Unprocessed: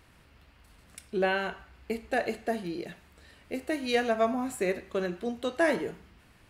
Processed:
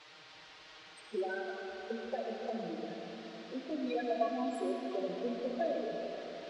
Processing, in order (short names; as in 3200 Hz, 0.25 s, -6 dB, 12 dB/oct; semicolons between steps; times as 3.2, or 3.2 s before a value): HPF 180 Hz 6 dB/oct; bell 990 Hz +3.5 dB 1.1 oct; compressor 3:1, threshold -30 dBFS, peak gain reduction 9 dB; loudest bins only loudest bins 4; band noise 330–4500 Hz -54 dBFS; envelope flanger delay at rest 6.9 ms, full sweep at -18 dBFS; digital reverb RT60 4.6 s, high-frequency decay 0.6×, pre-delay 25 ms, DRR 1 dB